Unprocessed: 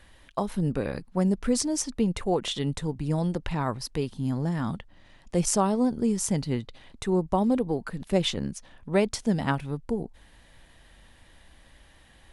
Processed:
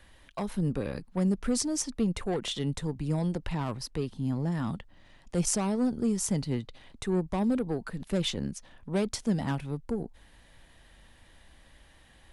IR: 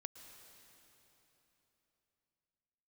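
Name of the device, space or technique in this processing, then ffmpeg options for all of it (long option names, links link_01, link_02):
one-band saturation: -filter_complex "[0:a]asettb=1/sr,asplit=3[link_01][link_02][link_03];[link_01]atrim=end=3.854[link_04];[link_02]atrim=start=3.85:end=4.52,asetpts=PTS-STARTPTS,afade=type=in:duration=0.004:curve=qsin,afade=type=out:start_time=0.666:duration=0.004:curve=qsin,highshelf=frequency=4700:gain=-5[link_05];[link_03]atrim=start=4.516[link_06];[link_04][link_05]acrossfade=duration=0.004:curve1=hsin:curve2=qsin[link_07];[link_07][link_06]acrossfade=duration=0.004:curve1=qsin:curve2=hsin,acrossover=split=300|4100[link_08][link_09][link_10];[link_09]asoftclip=type=tanh:threshold=-27dB[link_11];[link_08][link_11][link_10]amix=inputs=3:normalize=0,volume=-2dB"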